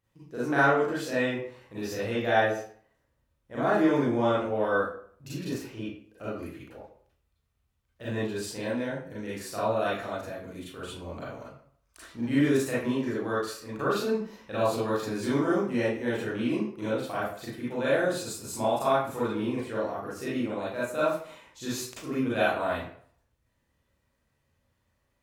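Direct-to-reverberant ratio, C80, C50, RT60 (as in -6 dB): -9.0 dB, 5.0 dB, -1.5 dB, 0.55 s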